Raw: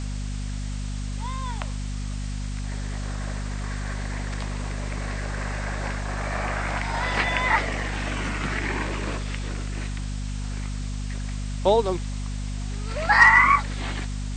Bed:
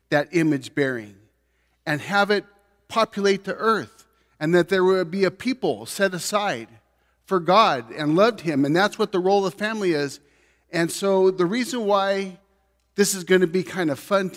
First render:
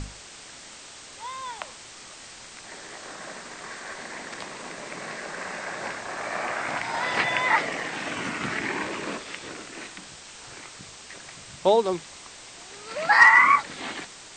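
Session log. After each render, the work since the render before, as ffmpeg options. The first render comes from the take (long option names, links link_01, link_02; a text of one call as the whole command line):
ffmpeg -i in.wav -af "bandreject=frequency=50:width_type=h:width=6,bandreject=frequency=100:width_type=h:width=6,bandreject=frequency=150:width_type=h:width=6,bandreject=frequency=200:width_type=h:width=6,bandreject=frequency=250:width_type=h:width=6" out.wav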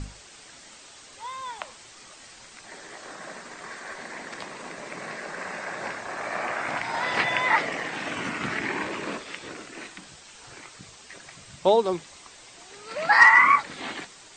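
ffmpeg -i in.wav -af "afftdn=noise_reduction=6:noise_floor=-45" out.wav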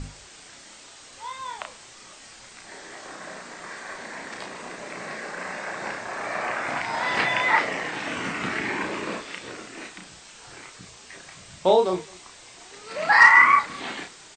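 ffmpeg -i in.wav -filter_complex "[0:a]asplit=2[link_01][link_02];[link_02]adelay=33,volume=-4.5dB[link_03];[link_01][link_03]amix=inputs=2:normalize=0,aecho=1:1:212:0.0631" out.wav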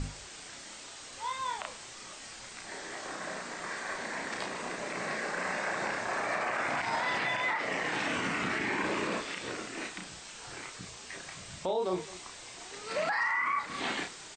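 ffmpeg -i in.wav -af "acompressor=threshold=-26dB:ratio=3,alimiter=limit=-22.5dB:level=0:latency=1:release=30" out.wav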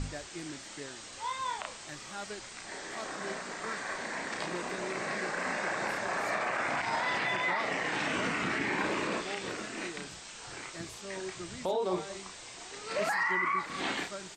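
ffmpeg -i in.wav -i bed.wav -filter_complex "[1:a]volume=-23dB[link_01];[0:a][link_01]amix=inputs=2:normalize=0" out.wav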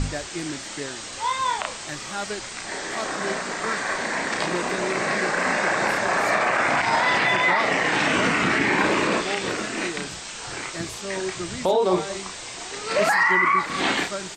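ffmpeg -i in.wav -af "volume=11dB" out.wav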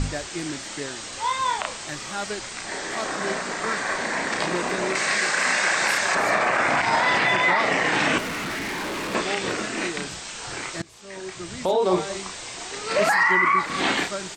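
ffmpeg -i in.wav -filter_complex "[0:a]asettb=1/sr,asplit=3[link_01][link_02][link_03];[link_01]atrim=end=4.954[link_04];[link_02]atrim=start=4.95:end=6.15,asetpts=PTS-STARTPTS,afade=type=in:duration=0.004:curve=qsin,afade=type=out:start_time=1.196:duration=0.004:curve=qsin,tiltshelf=frequency=1300:gain=-8[link_05];[link_03]atrim=start=6.146[link_06];[link_04][link_05]acrossfade=duration=0.004:curve1=hsin:curve2=qsin[link_07];[link_07][link_06]acrossfade=duration=0.004:curve1=qsin:curve2=hsin,asettb=1/sr,asplit=3[link_08][link_09][link_10];[link_08]atrim=end=8.184[link_11];[link_09]atrim=start=8.18:end=9.15,asetpts=PTS-STARTPTS,afade=type=in:duration=0.004:curve=qsin,afade=type=out:start_time=0.966:duration=0.004:curve=qsin,volume=28dB,asoftclip=hard,volume=-28dB[link_12];[link_10]atrim=start=9.146[link_13];[link_11][link_12]acrossfade=duration=0.004:curve1=hsin:curve2=qsin[link_14];[link_14][link_13]acrossfade=duration=0.004:curve1=qsin:curve2=hsin,asplit=2[link_15][link_16];[link_15]atrim=end=10.82,asetpts=PTS-STARTPTS,afade=type=out:start_time=10.816:duration=0.004:curve=hsin:silence=0.0944061[link_17];[link_16]atrim=start=10.82,asetpts=PTS-STARTPTS,afade=type=in:duration=1.09:silence=0.0944061[link_18];[link_17][link_18]concat=n=2:v=0:a=1" out.wav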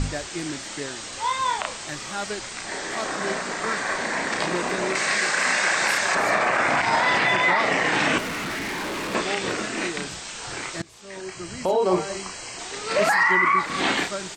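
ffmpeg -i in.wav -filter_complex "[0:a]asettb=1/sr,asplit=3[link_01][link_02][link_03];[link_01]atrim=end=11.214[link_04];[link_02]atrim=start=11.21:end=12.59,asetpts=PTS-STARTPTS,afade=type=in:duration=0.004:curve=qsin,afade=type=out:start_time=1.376:duration=0.004:curve=qsin,asuperstop=centerf=3600:order=12:qfactor=6.9[link_05];[link_03]atrim=start=12.586[link_06];[link_04][link_05]acrossfade=duration=0.004:curve1=hsin:curve2=qsin[link_07];[link_07][link_06]acrossfade=duration=0.004:curve1=qsin:curve2=hsin" out.wav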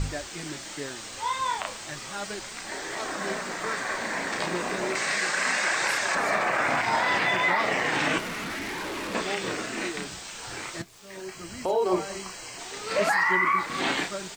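ffmpeg -i in.wav -af "acrusher=bits=9:dc=4:mix=0:aa=0.000001,flanger=delay=1.9:depth=9.6:regen=-52:speed=0.34:shape=triangular" out.wav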